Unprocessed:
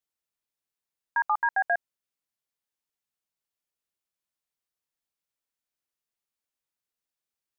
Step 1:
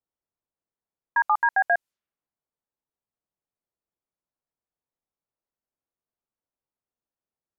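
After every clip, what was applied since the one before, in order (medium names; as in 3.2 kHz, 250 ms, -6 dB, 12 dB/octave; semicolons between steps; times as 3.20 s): level-controlled noise filter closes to 950 Hz, open at -28 dBFS; trim +4 dB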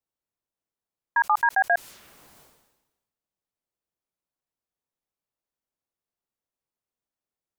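decay stretcher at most 53 dB/s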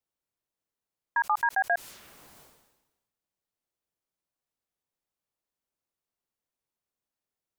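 peak limiter -17.5 dBFS, peak gain reduction 6.5 dB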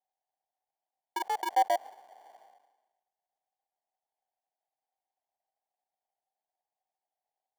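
sample-and-hold 34×; resonant high-pass 760 Hz, resonance Q 9.1; trim -8 dB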